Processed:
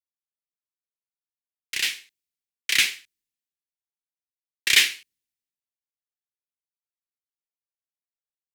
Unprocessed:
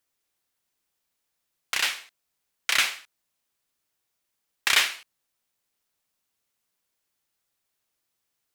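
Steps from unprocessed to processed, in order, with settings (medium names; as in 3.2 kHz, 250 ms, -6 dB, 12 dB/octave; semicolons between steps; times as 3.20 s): high-order bell 870 Hz -15.5 dB; three bands expanded up and down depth 70%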